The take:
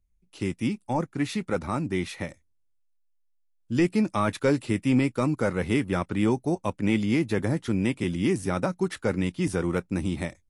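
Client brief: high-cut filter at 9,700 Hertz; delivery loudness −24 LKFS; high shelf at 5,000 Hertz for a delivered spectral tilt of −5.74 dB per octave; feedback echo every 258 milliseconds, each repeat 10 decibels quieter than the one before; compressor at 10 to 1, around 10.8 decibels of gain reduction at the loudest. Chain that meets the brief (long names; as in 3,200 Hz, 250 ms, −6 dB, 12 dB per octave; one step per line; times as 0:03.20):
low-pass filter 9,700 Hz
high-shelf EQ 5,000 Hz +6.5 dB
downward compressor 10 to 1, threshold −29 dBFS
repeating echo 258 ms, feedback 32%, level −10 dB
level +10.5 dB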